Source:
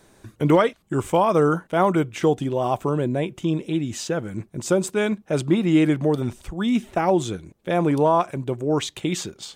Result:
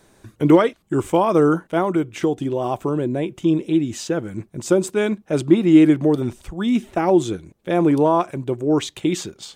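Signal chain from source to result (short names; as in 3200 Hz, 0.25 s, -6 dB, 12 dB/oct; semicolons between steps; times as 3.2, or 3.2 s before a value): dynamic EQ 330 Hz, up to +7 dB, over -34 dBFS, Q 2.4; 1.78–3.3 compressor 2:1, threshold -19 dBFS, peak gain reduction 5 dB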